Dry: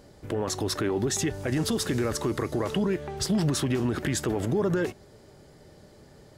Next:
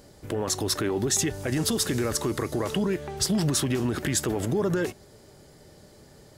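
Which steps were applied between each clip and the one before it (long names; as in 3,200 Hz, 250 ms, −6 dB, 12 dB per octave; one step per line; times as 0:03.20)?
high-shelf EQ 5,100 Hz +8 dB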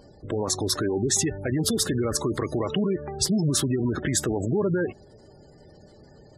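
gate on every frequency bin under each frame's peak −20 dB strong
level +1.5 dB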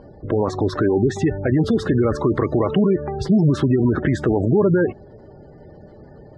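low-pass filter 1,700 Hz 12 dB per octave
level +8 dB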